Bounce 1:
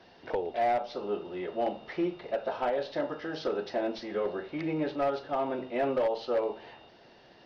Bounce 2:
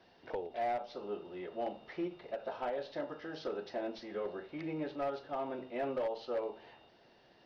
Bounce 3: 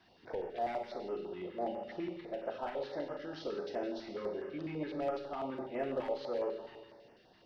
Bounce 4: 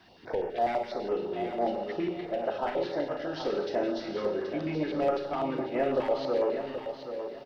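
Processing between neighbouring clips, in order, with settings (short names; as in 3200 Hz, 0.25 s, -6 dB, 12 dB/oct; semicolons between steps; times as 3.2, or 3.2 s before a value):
ending taper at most 260 dB/s; gain -7.5 dB
Schroeder reverb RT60 1.3 s, combs from 30 ms, DRR 3.5 dB; stepped notch 12 Hz 510–3900 Hz
feedback echo 0.777 s, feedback 26%, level -9 dB; gain +8 dB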